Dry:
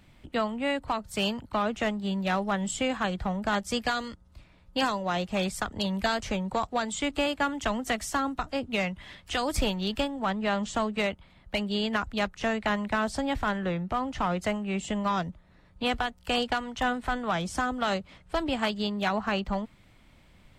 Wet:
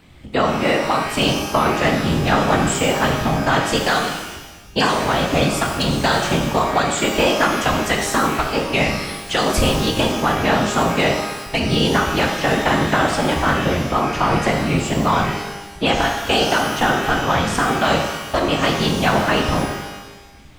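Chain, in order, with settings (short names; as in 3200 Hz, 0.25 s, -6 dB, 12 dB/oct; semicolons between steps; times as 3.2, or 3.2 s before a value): whisperiser; shimmer reverb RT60 1.1 s, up +12 st, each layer -8 dB, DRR 1.5 dB; gain +8.5 dB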